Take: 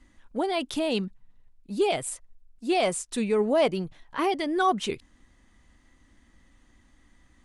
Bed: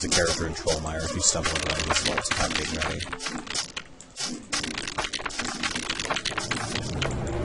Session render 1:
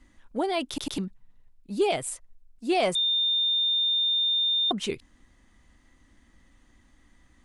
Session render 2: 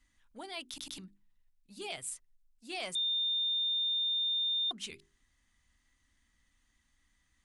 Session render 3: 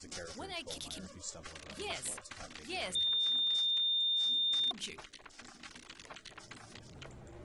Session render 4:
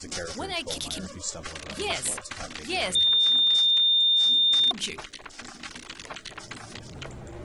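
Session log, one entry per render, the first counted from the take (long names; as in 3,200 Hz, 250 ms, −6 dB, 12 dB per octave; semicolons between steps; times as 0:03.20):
0:00.68: stutter in place 0.10 s, 3 plays; 0:02.95–0:04.71: beep over 3,620 Hz −21.5 dBFS
guitar amp tone stack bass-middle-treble 5-5-5; mains-hum notches 50/100/150/200/250/300/350/400 Hz
mix in bed −22.5 dB
level +11 dB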